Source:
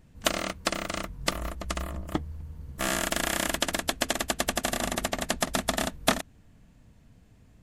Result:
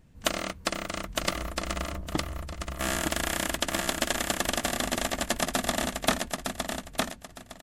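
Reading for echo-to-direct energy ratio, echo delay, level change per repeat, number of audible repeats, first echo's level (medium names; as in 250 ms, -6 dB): -3.0 dB, 910 ms, -12.5 dB, 3, -3.5 dB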